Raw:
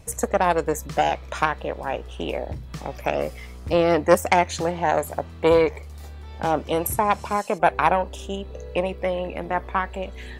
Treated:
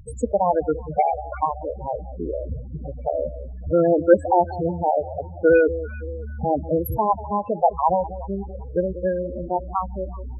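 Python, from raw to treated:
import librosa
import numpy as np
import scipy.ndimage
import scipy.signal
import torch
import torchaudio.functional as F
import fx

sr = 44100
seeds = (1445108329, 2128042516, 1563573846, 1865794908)

y = fx.halfwave_hold(x, sr)
y = fx.echo_alternate(y, sr, ms=190, hz=860.0, feedback_pct=67, wet_db=-13.0)
y = fx.spec_topn(y, sr, count=8)
y = y * 10.0 ** (-1.0 / 20.0)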